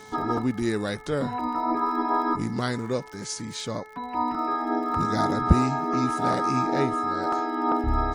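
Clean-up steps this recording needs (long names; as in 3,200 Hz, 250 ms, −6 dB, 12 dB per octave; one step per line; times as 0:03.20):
click removal
hum removal 431.6 Hz, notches 5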